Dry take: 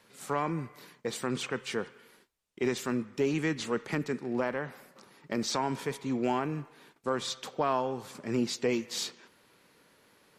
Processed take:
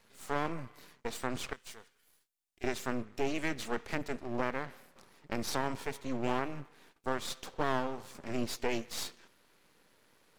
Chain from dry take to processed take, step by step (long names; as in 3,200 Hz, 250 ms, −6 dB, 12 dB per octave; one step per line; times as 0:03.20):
0:01.53–0:02.64: first-order pre-emphasis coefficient 0.9
half-wave rectification